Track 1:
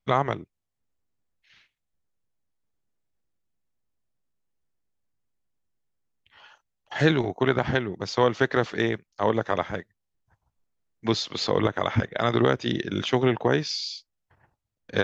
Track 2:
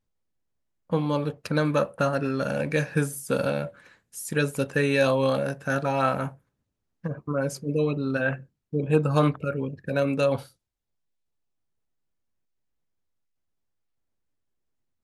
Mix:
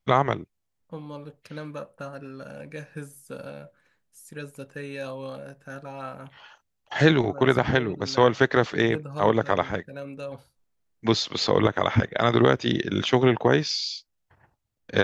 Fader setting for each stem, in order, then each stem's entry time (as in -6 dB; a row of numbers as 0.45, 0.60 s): +2.5, -13.0 dB; 0.00, 0.00 s